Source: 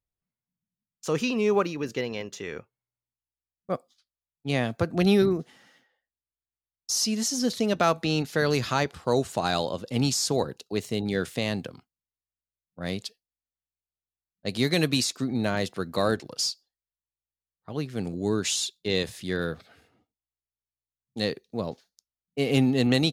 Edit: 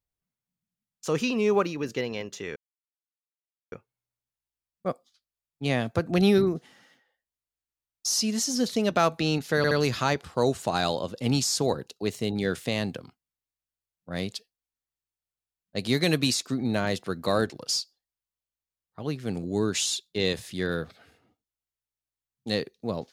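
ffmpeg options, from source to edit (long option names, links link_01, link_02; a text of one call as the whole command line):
ffmpeg -i in.wav -filter_complex "[0:a]asplit=4[link_01][link_02][link_03][link_04];[link_01]atrim=end=2.56,asetpts=PTS-STARTPTS,afade=type=out:start_time=2.556:duration=0.004:curve=hsin,apad=pad_dur=1.16[link_05];[link_02]atrim=start=2.56:end=8.482,asetpts=PTS-STARTPTS,afade=type=in:duration=0.004:curve=hsin[link_06];[link_03]atrim=start=8.408:end=8.482[link_07];[link_04]atrim=start=8.408[link_08];[link_05][link_06]concat=n=2:v=0:a=1[link_09];[link_09][link_07]acrossfade=duration=0.004:curve1=hsin:curve2=hsin[link_10];[link_10][link_08]acrossfade=duration=0.004:curve1=hsin:curve2=hsin" out.wav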